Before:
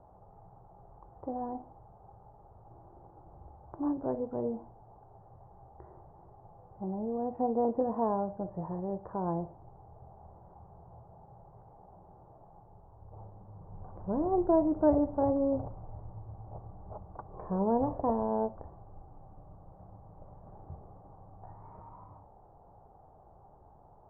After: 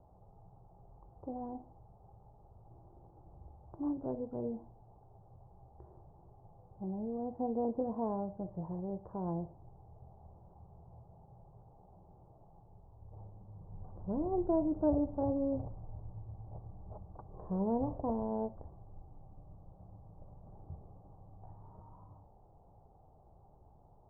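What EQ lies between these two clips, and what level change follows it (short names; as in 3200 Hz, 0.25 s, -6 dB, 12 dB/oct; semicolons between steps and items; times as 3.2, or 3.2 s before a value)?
LPF 1300 Hz 12 dB/oct; air absorption 500 m; low shelf 320 Hz +5.5 dB; -6.0 dB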